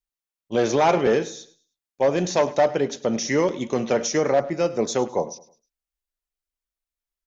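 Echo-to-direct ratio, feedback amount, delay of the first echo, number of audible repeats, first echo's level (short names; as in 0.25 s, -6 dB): -17.5 dB, 34%, 0.104 s, 2, -18.0 dB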